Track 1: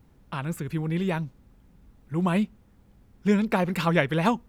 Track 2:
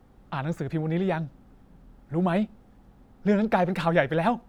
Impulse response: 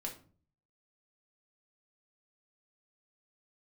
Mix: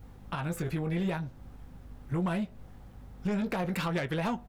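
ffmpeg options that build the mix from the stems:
-filter_complex "[0:a]asoftclip=type=tanh:threshold=-20.5dB,aeval=exprs='val(0)+0.00251*(sin(2*PI*50*n/s)+sin(2*PI*2*50*n/s)/2+sin(2*PI*3*50*n/s)/3+sin(2*PI*4*50*n/s)/4+sin(2*PI*5*50*n/s)/5)':channel_layout=same,volume=3dB[link_01];[1:a]equalizer=frequency=180:width_type=o:width=1.5:gain=-13,acompressor=threshold=-35dB:ratio=3,volume=-1,adelay=19,volume=0dB,asplit=2[link_02][link_03];[link_03]volume=-6.5dB[link_04];[2:a]atrim=start_sample=2205[link_05];[link_04][link_05]afir=irnorm=-1:irlink=0[link_06];[link_01][link_02][link_06]amix=inputs=3:normalize=0,alimiter=limit=-24dB:level=0:latency=1:release=265"

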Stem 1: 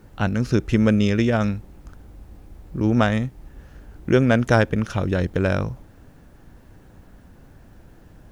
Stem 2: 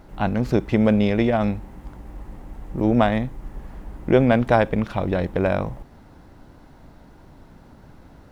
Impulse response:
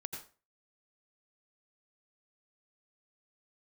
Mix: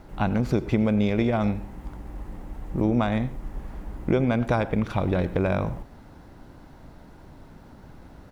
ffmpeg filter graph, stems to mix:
-filter_complex "[0:a]volume=-16.5dB[link_01];[1:a]acompressor=threshold=-20dB:ratio=4,adelay=0.7,volume=-2dB,asplit=2[link_02][link_03];[link_03]volume=-8dB[link_04];[2:a]atrim=start_sample=2205[link_05];[link_04][link_05]afir=irnorm=-1:irlink=0[link_06];[link_01][link_02][link_06]amix=inputs=3:normalize=0"

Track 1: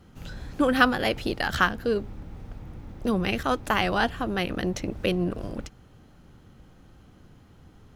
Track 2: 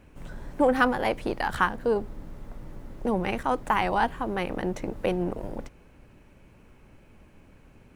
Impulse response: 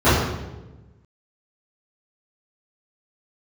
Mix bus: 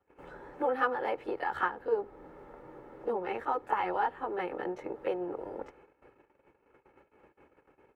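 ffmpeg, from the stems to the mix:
-filter_complex "[0:a]asplit=2[link_01][link_02];[link_02]adelay=8.9,afreqshift=0.51[link_03];[link_01][link_03]amix=inputs=2:normalize=1,volume=-9dB[link_04];[1:a]agate=range=-23dB:threshold=-51dB:ratio=16:detection=peak,equalizer=frequency=83:width_type=o:width=0.77:gain=-5.5,acompressor=threshold=-39dB:ratio=2,adelay=23,volume=3dB,asplit=2[link_05][link_06];[link_06]apad=whole_len=351217[link_07];[link_04][link_07]sidechaingate=range=-33dB:threshold=-53dB:ratio=16:detection=peak[link_08];[link_08][link_05]amix=inputs=2:normalize=0,highpass=60,acrossover=split=290 2100:gain=0.158 1 0.1[link_09][link_10][link_11];[link_09][link_10][link_11]amix=inputs=3:normalize=0,aecho=1:1:2.3:0.48"

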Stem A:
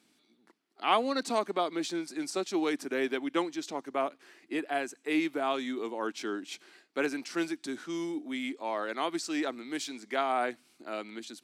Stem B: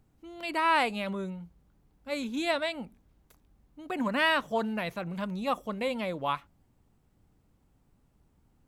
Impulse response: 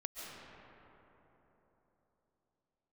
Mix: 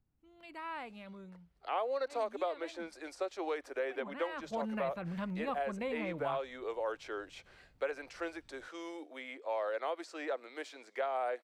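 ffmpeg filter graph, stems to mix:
-filter_complex "[0:a]highpass=frequency=520:width_type=q:width=4.6,adelay=850,volume=-10dB[link_01];[1:a]lowshelf=frequency=290:gain=11,volume=-10.5dB,afade=type=in:start_time=4.24:duration=0.47:silence=0.237137[link_02];[link_01][link_02]amix=inputs=2:normalize=0,equalizer=frequency=1800:width=0.4:gain=7,acrossover=split=780|2100[link_03][link_04][link_05];[link_03]acompressor=threshold=-35dB:ratio=4[link_06];[link_04]acompressor=threshold=-41dB:ratio=4[link_07];[link_05]acompressor=threshold=-54dB:ratio=4[link_08];[link_06][link_07][link_08]amix=inputs=3:normalize=0"

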